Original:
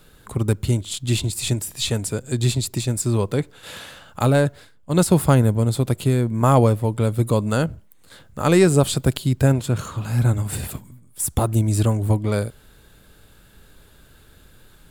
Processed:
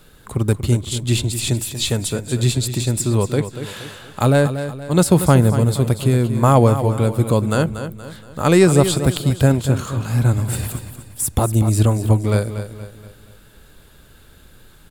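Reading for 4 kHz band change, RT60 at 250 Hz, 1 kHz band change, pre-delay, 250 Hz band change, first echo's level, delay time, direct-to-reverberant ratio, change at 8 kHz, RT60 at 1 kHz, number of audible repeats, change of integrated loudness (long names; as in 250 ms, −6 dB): +3.0 dB, no reverb audible, +3.0 dB, no reverb audible, +3.0 dB, −10.5 dB, 236 ms, no reverb audible, +3.0 dB, no reverb audible, 4, +3.0 dB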